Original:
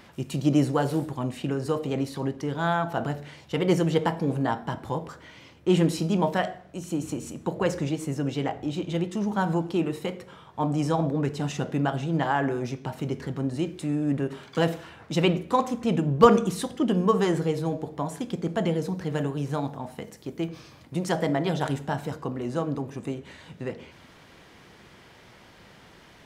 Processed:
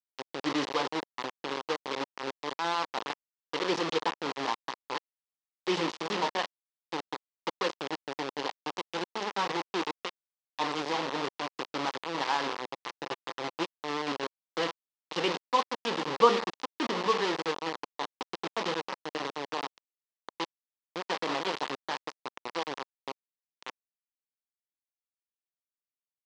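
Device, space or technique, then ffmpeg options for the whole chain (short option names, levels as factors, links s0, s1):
hand-held game console: -filter_complex "[0:a]acrusher=bits=3:mix=0:aa=0.000001,highpass=420,equalizer=f=650:t=q:w=4:g=-8,equalizer=f=1000:t=q:w=4:g=3,equalizer=f=1500:t=q:w=4:g=-5,equalizer=f=2300:t=q:w=4:g=-3,lowpass=f=5100:w=0.5412,lowpass=f=5100:w=1.3066,asettb=1/sr,asplit=3[s0][s1][s2];[s0]atrim=end=12.664[s3];[s1]atrim=start=12.66:end=13.8,asetpts=PTS-STARTPTS,afade=t=in:d=0.004:c=qsin,afade=t=out:st=1.136:d=0.004:c=qsin,aecho=1:1:5.9:0.4,atrim=end_sample=50274[s4];[s2]atrim=start=13.796[s5];[s3][s4]acrossfade=d=0.004:c1=hsin:c2=qsin[s6];[s6][s5]acrossfade=d=0.004:c1=qsin:c2=hsin,volume=0.708"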